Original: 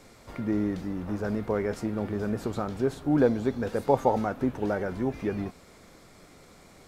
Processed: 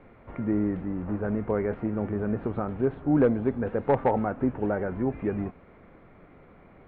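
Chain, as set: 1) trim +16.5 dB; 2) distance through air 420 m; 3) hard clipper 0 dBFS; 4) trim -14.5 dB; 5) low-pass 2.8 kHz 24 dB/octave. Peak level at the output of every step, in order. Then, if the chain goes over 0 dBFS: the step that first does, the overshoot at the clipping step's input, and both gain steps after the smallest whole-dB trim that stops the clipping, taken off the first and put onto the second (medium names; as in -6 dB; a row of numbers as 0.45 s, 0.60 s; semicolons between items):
+9.0 dBFS, +7.5 dBFS, 0.0 dBFS, -14.5 dBFS, -13.5 dBFS; step 1, 7.5 dB; step 1 +8.5 dB, step 4 -6.5 dB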